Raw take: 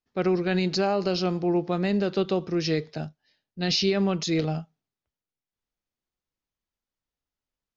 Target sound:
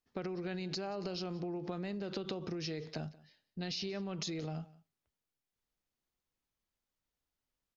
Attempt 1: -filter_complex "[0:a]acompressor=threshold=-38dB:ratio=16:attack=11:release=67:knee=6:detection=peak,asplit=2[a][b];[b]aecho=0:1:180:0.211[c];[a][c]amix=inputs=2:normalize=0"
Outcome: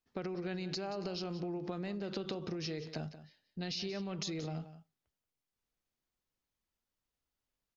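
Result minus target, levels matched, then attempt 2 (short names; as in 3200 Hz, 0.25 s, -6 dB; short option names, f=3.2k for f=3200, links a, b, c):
echo-to-direct +8 dB
-filter_complex "[0:a]acompressor=threshold=-38dB:ratio=16:attack=11:release=67:knee=6:detection=peak,asplit=2[a][b];[b]aecho=0:1:180:0.0841[c];[a][c]amix=inputs=2:normalize=0"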